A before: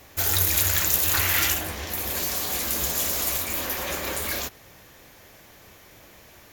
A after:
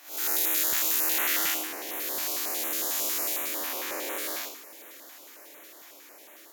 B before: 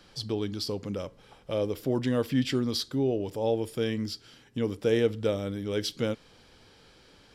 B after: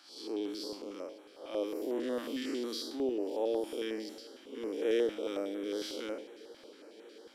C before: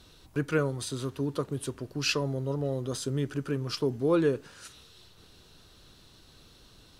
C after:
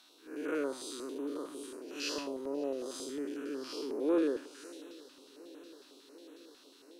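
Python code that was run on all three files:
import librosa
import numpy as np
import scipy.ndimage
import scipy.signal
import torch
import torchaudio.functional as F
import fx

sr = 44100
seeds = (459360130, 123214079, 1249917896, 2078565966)

p1 = fx.spec_blur(x, sr, span_ms=174.0)
p2 = scipy.signal.sosfilt(scipy.signal.cheby1(4, 1.0, 290.0, 'highpass', fs=sr, output='sos'), p1)
p3 = p2 + fx.echo_swing(p2, sr, ms=751, ratio=3, feedback_pct=76, wet_db=-23.0, dry=0)
y = fx.filter_held_notch(p3, sr, hz=11.0, low_hz=450.0, high_hz=4800.0)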